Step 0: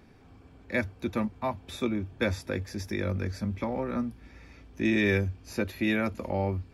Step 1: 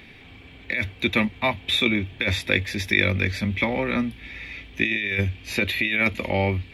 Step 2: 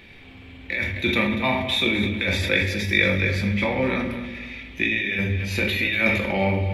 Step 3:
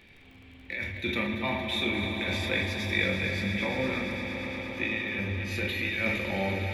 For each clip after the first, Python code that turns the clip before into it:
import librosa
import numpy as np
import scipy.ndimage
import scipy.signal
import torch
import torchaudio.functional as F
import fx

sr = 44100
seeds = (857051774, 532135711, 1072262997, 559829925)

y1 = fx.band_shelf(x, sr, hz=2700.0, db=16.0, octaves=1.3)
y1 = fx.over_compress(y1, sr, threshold_db=-24.0, ratio=-1.0)
y1 = fx.high_shelf(y1, sr, hz=11000.0, db=5.0)
y1 = y1 * librosa.db_to_amplitude(3.0)
y2 = fx.echo_feedback(y1, sr, ms=239, feedback_pct=34, wet_db=-13.0)
y2 = fx.room_shoebox(y2, sr, seeds[0], volume_m3=150.0, walls='mixed', distance_m=0.81)
y2 = fx.sustainer(y2, sr, db_per_s=46.0)
y2 = y2 * librosa.db_to_amplitude(-2.5)
y3 = fx.echo_swell(y2, sr, ms=115, loudest=5, wet_db=-13.0)
y3 = fx.dmg_crackle(y3, sr, seeds[1], per_s=27.0, level_db=-38.0)
y3 = y3 * librosa.db_to_amplitude(-8.5)